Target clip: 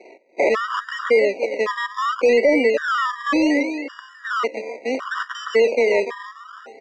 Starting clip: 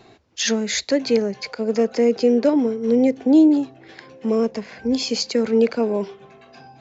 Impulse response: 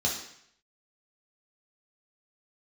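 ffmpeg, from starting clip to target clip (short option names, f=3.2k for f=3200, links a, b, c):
-filter_complex "[0:a]asettb=1/sr,asplit=3[a][b][c];[a]atrim=end=4.284[d];[b]atrim=start=4.28:end=5.08,asetpts=PTS-STARTPTS,afade=t=in:d=0.004:c=qsin,afade=t=out:st=0.796:d=0.004:c=qsin,aeval=exprs='if(lt(val(0),0),0.251*val(0),val(0))':c=same[e];[c]atrim=start=5.076[f];[d][e]acrossfade=d=0.004:c1=hsin:c2=qsin[g];[g][f]acrossfade=d=0.004:c1=qsin:c2=hsin,equalizer=f=1.6k:t=o:w=2.1:g=-4.5,asoftclip=type=tanh:threshold=-12dB,aecho=1:1:291|582|873|1164:0.2|0.0778|0.0303|0.0118,acrusher=samples=24:mix=1:aa=0.000001:lfo=1:lforange=14.4:lforate=0.69,highpass=f=310:w=0.5412,highpass=f=310:w=1.3066,equalizer=f=550:t=q:w=4:g=8,equalizer=f=840:t=q:w=4:g=-9,equalizer=f=1.3k:t=q:w=4:g=5,equalizer=f=2.2k:t=q:w=4:g=5,equalizer=f=3.5k:t=q:w=4:g=-8,lowpass=f=6.5k:w=0.5412,lowpass=f=6.5k:w=1.3066,asplit=2[h][i];[i]highpass=f=720:p=1,volume=11dB,asoftclip=type=tanh:threshold=-5dB[j];[h][j]amix=inputs=2:normalize=0,lowpass=f=1.8k:p=1,volume=-6dB,alimiter=limit=-13.5dB:level=0:latency=1:release=20,afftfilt=real='re*gt(sin(2*PI*0.9*pts/sr)*(1-2*mod(floor(b*sr/1024/960),2)),0)':imag='im*gt(sin(2*PI*0.9*pts/sr)*(1-2*mod(floor(b*sr/1024/960),2)),0)':win_size=1024:overlap=0.75,volume=5.5dB"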